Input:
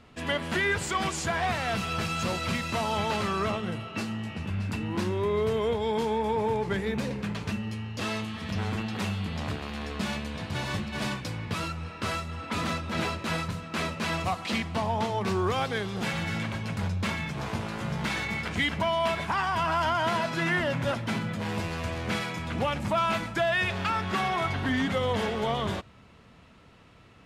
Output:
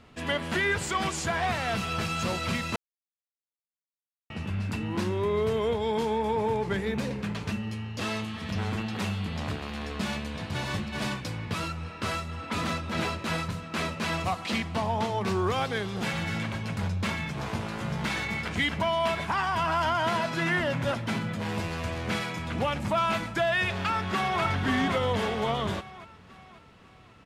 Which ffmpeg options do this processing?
ffmpeg -i in.wav -filter_complex "[0:a]asplit=2[link_01][link_02];[link_02]afade=type=in:start_time=23.8:duration=0.01,afade=type=out:start_time=24.42:duration=0.01,aecho=0:1:540|1080|1620|2160|2700|3240:0.630957|0.283931|0.127769|0.057496|0.0258732|0.0116429[link_03];[link_01][link_03]amix=inputs=2:normalize=0,asplit=3[link_04][link_05][link_06];[link_04]atrim=end=2.76,asetpts=PTS-STARTPTS,afade=type=out:start_time=2.756:duration=0.004:curve=hsin[link_07];[link_05]atrim=start=2.76:end=4.3,asetpts=PTS-STARTPTS,volume=0[link_08];[link_06]atrim=start=4.3,asetpts=PTS-STARTPTS,afade=type=in:duration=0.004:curve=hsin[link_09];[link_07][link_08][link_09]concat=n=3:v=0:a=1" out.wav

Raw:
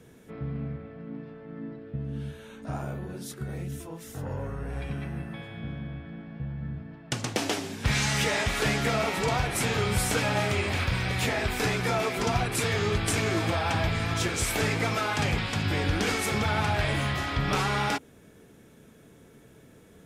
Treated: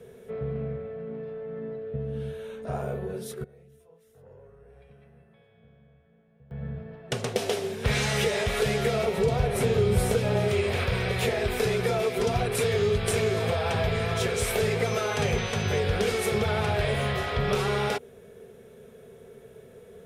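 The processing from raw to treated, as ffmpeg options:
ffmpeg -i in.wav -filter_complex "[0:a]asettb=1/sr,asplit=3[link_01][link_02][link_03];[link_01]atrim=end=9.054[link_04];[link_02]atrim=start=9.05:end=10.48,asetpts=PTS-STARTPTS,afade=type=in:duration=0.004:curve=qsin,afade=type=out:start_time=1.426:duration=0.004:curve=qsin,tiltshelf=frequency=970:gain=4[link_05];[link_03]atrim=start=10.476[link_06];[link_04][link_05]acrossfade=duration=0.004:curve1=hsin:curve2=qsin[link_07];[link_07][link_06]acrossfade=duration=0.004:curve1=qsin:curve2=hsin,asettb=1/sr,asplit=3[link_08][link_09][link_10];[link_08]atrim=end=14.864[link_11];[link_09]atrim=start=14.86:end=15.79,asetpts=PTS-STARTPTS,afade=type=in:duration=0.004:curve=qsin,afade=type=out:start_time=0.926:duration=0.004:curve=qsin,aeval=exprs='val(0)+0.01*sin(2*PI*6100*n/s)':channel_layout=same[link_12];[link_10]atrim=start=15.786[link_13];[link_11][link_12]acrossfade=duration=0.004:curve1=hsin:curve2=qsin[link_14];[link_14][link_13]acrossfade=duration=0.004:curve1=qsin:curve2=hsin,asplit=3[link_15][link_16][link_17];[link_15]atrim=end=3.44,asetpts=PTS-STARTPTS,afade=type=out:start_time=3.31:duration=0.13:curve=log:silence=0.0841395[link_18];[link_16]atrim=start=3.44:end=6.51,asetpts=PTS-STARTPTS,volume=-21.5dB[link_19];[link_17]atrim=start=6.51,asetpts=PTS-STARTPTS,afade=type=in:duration=0.13:curve=log:silence=0.0841395[link_20];[link_18][link_19][link_20]concat=n=3:v=0:a=1,superequalizer=6b=0.282:7b=3.55:8b=2:14b=0.708:15b=0.631,acrossover=split=270|3000[link_21][link_22][link_23];[link_22]acompressor=threshold=-25dB:ratio=6[link_24];[link_21][link_24][link_23]amix=inputs=3:normalize=0" out.wav

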